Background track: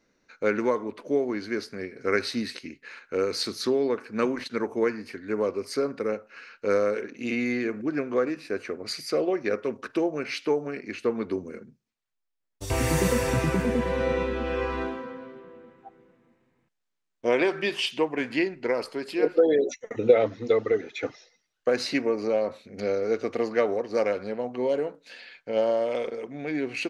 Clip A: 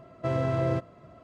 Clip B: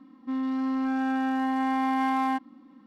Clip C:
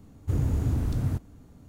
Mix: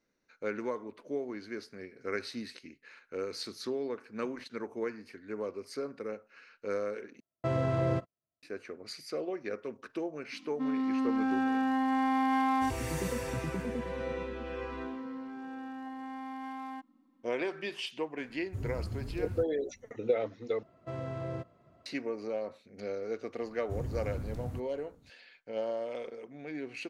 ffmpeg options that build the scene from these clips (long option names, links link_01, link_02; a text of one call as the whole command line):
ffmpeg -i bed.wav -i cue0.wav -i cue1.wav -i cue2.wav -filter_complex "[1:a]asplit=2[link_01][link_02];[2:a]asplit=2[link_03][link_04];[3:a]asplit=2[link_05][link_06];[0:a]volume=-10.5dB[link_07];[link_01]agate=range=-43dB:threshold=-43dB:ratio=16:release=100:detection=peak[link_08];[link_05]asplit=2[link_09][link_10];[link_10]adelay=4.6,afreqshift=2.4[link_11];[link_09][link_11]amix=inputs=2:normalize=1[link_12];[link_07]asplit=3[link_13][link_14][link_15];[link_13]atrim=end=7.204[link_16];[link_08]atrim=end=1.23,asetpts=PTS-STARTPTS,volume=-2.5dB[link_17];[link_14]atrim=start=8.426:end=20.634[link_18];[link_02]atrim=end=1.23,asetpts=PTS-STARTPTS,volume=-11dB[link_19];[link_15]atrim=start=21.856[link_20];[link_03]atrim=end=2.86,asetpts=PTS-STARTPTS,volume=-2.5dB,afade=type=in:duration=0.004:curve=hsin,afade=type=out:start_time=2.856:duration=0.004:curve=hsin,adelay=10320[link_21];[link_04]atrim=end=2.86,asetpts=PTS-STARTPTS,volume=-15.5dB,afade=type=in:duration=0.004:curve=hsin,afade=type=out:start_time=2.856:duration=0.004:curve=hsin,adelay=14430[link_22];[link_12]atrim=end=1.68,asetpts=PTS-STARTPTS,volume=-9.5dB,afade=type=in:duration=0.004:curve=hsin,afade=type=out:start_time=1.676:duration=0.004:curve=hsin,adelay=18250[link_23];[link_06]atrim=end=1.68,asetpts=PTS-STARTPTS,volume=-11.5dB,afade=type=in:duration=0.004:curve=hsin,afade=type=out:start_time=1.676:duration=0.004:curve=hsin,adelay=23420[link_24];[link_16][link_17]acrossfade=duration=0.004:curve1=hsin:curve2=hsin[link_25];[link_25][link_18]acrossfade=duration=0.004:curve1=hsin:curve2=hsin[link_26];[link_26][link_19]acrossfade=duration=0.004:curve1=hsin:curve2=hsin[link_27];[link_27][link_20]acrossfade=duration=0.004:curve1=hsin:curve2=hsin[link_28];[link_28][link_21][link_22][link_23][link_24]amix=inputs=5:normalize=0" out.wav